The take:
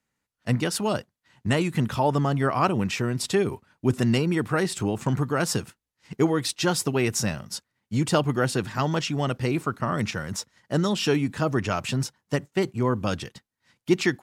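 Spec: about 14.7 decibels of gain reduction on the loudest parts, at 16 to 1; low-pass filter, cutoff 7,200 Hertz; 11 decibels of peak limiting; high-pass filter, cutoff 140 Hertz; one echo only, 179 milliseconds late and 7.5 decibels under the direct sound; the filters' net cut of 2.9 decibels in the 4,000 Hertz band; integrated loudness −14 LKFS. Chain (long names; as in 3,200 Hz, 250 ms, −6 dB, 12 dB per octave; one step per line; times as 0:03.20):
high-pass filter 140 Hz
low-pass filter 7,200 Hz
parametric band 4,000 Hz −3.5 dB
downward compressor 16 to 1, threshold −31 dBFS
brickwall limiter −27.5 dBFS
single-tap delay 179 ms −7.5 dB
level +24.5 dB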